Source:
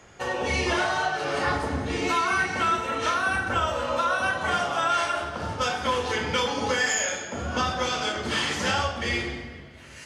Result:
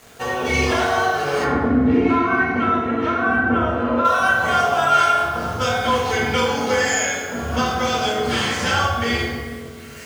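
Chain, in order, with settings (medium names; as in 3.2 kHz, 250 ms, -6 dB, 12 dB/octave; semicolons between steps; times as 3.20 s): bit crusher 8-bit; 1.44–4.05 s: FFT filter 150 Hz 0 dB, 250 Hz +11 dB, 550 Hz -1 dB, 2.1 kHz -3 dB, 7.5 kHz -24 dB; reverberation RT60 1.1 s, pre-delay 3 ms, DRR -1.5 dB; trim +2 dB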